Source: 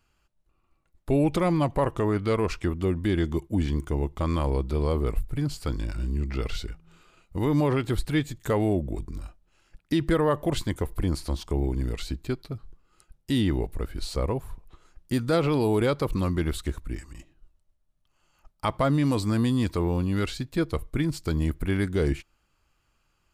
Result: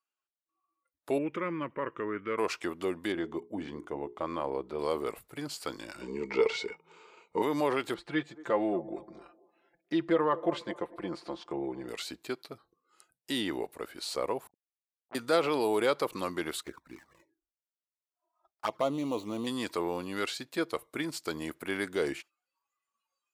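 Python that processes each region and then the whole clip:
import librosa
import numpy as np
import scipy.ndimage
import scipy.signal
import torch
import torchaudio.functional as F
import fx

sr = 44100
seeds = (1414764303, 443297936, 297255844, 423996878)

y = fx.chain(x, sr, fx.air_absorb(metres=210.0),
    fx.fixed_phaser(hz=1800.0, stages=4), at=(1.18, 2.38))
y = fx.chain(y, sr, fx.lowpass(hz=1200.0, slope=6),
    fx.hum_notches(base_hz=60, count=7), at=(3.12, 4.79))
y = fx.chain(y, sr, fx.lowpass(hz=7500.0, slope=24),
    fx.peak_eq(hz=200.0, db=7.5, octaves=0.31),
    fx.small_body(hz=(440.0, 910.0, 2200.0), ring_ms=45, db=17), at=(6.01, 7.42))
y = fx.chain(y, sr, fx.spacing_loss(db_at_10k=25),
    fx.comb(ms=5.8, depth=0.62),
    fx.echo_wet_bandpass(ms=230, feedback_pct=33, hz=570.0, wet_db=-16.0), at=(7.94, 11.89))
y = fx.chain(y, sr, fx.backlash(play_db=-29.5),
    fx.ladder_lowpass(hz=850.0, resonance_pct=70),
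    fx.transformer_sat(knee_hz=1100.0), at=(14.47, 15.15))
y = fx.chain(y, sr, fx.median_filter(points=15),
    fx.env_flanger(rest_ms=3.1, full_db=-22.0), at=(16.63, 19.47))
y = scipy.signal.sosfilt(scipy.signal.butter(2, 440.0, 'highpass', fs=sr, output='sos'), y)
y = fx.noise_reduce_blind(y, sr, reduce_db=21)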